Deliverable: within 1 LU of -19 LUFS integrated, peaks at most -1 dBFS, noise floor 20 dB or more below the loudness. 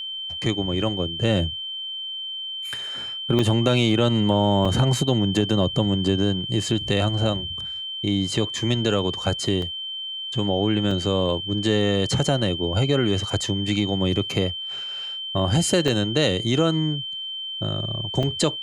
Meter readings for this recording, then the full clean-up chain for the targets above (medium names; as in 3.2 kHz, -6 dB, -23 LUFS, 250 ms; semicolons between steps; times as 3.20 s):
dropouts 6; longest dropout 3.2 ms; steady tone 3.1 kHz; tone level -29 dBFS; loudness -23.0 LUFS; peak level -7.0 dBFS; loudness target -19.0 LUFS
-> interpolate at 3.39/4.65/9.62/10.91/15.88/18.23 s, 3.2 ms; band-stop 3.1 kHz, Q 30; trim +4 dB